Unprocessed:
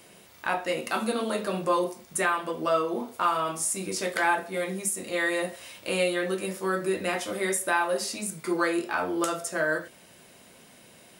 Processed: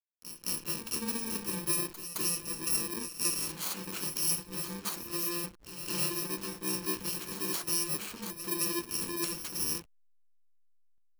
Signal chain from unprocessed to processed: FFT order left unsorted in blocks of 64 samples; backlash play -30 dBFS; reverse echo 0.216 s -11 dB; gain -5 dB

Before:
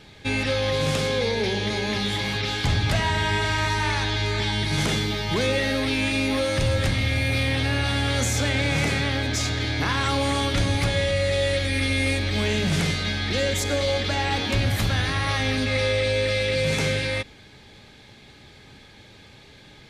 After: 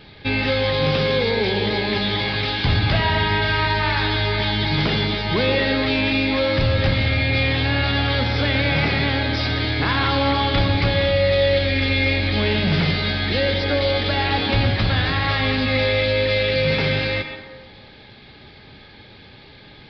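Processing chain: on a send at -7 dB: HPF 190 Hz + reverb RT60 1.2 s, pre-delay 0.108 s; on the sum: downsampling 11025 Hz; gain +3.5 dB

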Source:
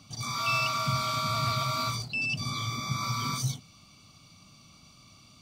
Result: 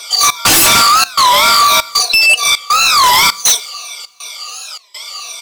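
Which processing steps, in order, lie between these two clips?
moving spectral ripple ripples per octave 1.6, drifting -2.8 Hz, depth 16 dB; steep high-pass 440 Hz 48 dB/oct; high shelf 2600 Hz +8.5 dB; comb 4.2 ms, depth 96%; 0.81–3.06 compressor 6:1, threshold -22 dBFS, peak gain reduction 8 dB; step gate "xx.xxxx.xx" 100 bpm -24 dB; sine folder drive 16 dB, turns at -5 dBFS; two-slope reverb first 0.55 s, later 3.4 s, from -22 dB, DRR 19.5 dB; record warp 33 1/3 rpm, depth 250 cents

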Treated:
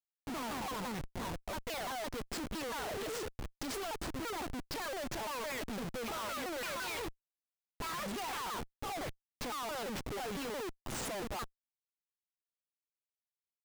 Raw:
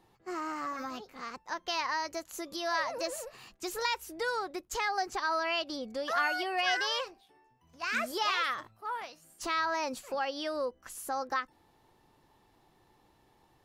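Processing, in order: repeated pitch sweeps -7.5 st, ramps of 0.17 s; Schmitt trigger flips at -44 dBFS; gain -2.5 dB

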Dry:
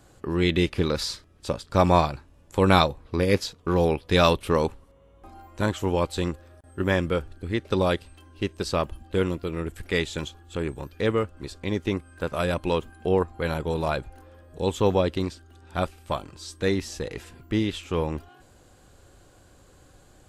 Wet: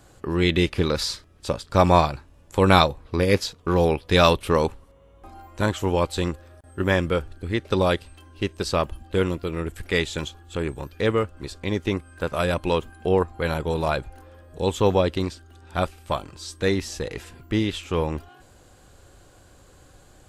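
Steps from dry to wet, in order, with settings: bell 240 Hz -2 dB 1.8 oct; gain +3 dB

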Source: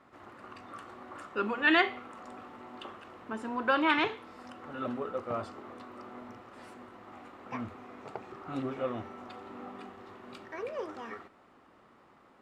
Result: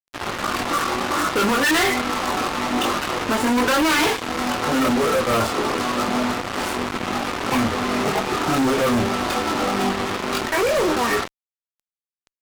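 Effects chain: in parallel at -1 dB: compressor 8:1, threshold -42 dBFS, peak gain reduction 22 dB; on the sum: chorus voices 6, 0.26 Hz, delay 23 ms, depth 3.5 ms; fuzz box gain 50 dB, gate -47 dBFS; gain -3.5 dB

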